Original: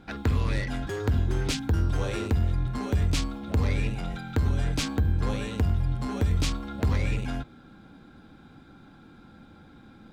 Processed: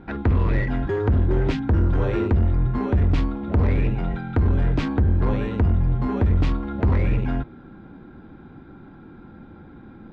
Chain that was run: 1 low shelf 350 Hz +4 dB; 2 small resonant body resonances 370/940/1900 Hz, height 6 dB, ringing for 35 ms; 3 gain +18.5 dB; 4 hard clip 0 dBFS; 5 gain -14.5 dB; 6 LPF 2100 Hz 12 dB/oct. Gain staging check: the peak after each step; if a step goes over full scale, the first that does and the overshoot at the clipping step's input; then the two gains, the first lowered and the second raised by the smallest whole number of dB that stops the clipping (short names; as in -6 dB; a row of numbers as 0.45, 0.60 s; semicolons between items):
-13.5, -12.0, +6.5, 0.0, -14.5, -14.0 dBFS; step 3, 6.5 dB; step 3 +11.5 dB, step 5 -7.5 dB